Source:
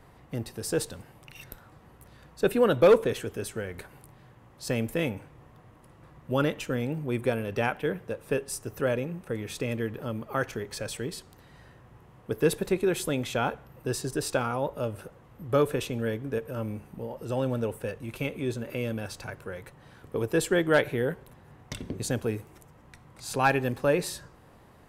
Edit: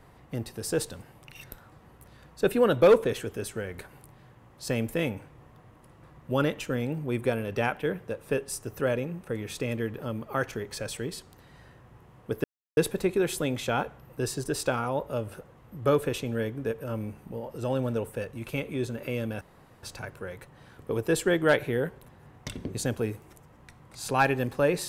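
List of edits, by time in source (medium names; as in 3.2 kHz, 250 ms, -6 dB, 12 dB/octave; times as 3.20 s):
12.44 s: insert silence 0.33 s
19.08 s: insert room tone 0.42 s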